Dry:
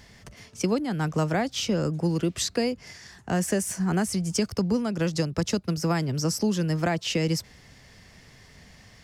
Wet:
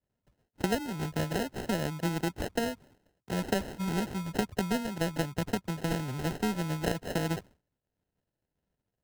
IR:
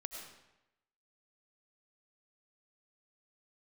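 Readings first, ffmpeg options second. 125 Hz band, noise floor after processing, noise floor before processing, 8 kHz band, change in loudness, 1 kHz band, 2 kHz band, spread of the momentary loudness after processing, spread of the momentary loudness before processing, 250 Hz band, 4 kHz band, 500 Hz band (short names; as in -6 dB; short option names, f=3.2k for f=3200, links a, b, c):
-6.5 dB, under -85 dBFS, -53 dBFS, -11.0 dB, -6.0 dB, -3.0 dB, -3.0 dB, 3 LU, 4 LU, -6.5 dB, -7.5 dB, -5.5 dB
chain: -af "acrusher=samples=38:mix=1:aa=0.000001,aeval=exprs='0.224*(cos(1*acos(clip(val(0)/0.224,-1,1)))-cos(1*PI/2))+0.0398*(cos(3*acos(clip(val(0)/0.224,-1,1)))-cos(3*PI/2))':c=same,agate=range=-33dB:threshold=-42dB:ratio=3:detection=peak,volume=-2dB"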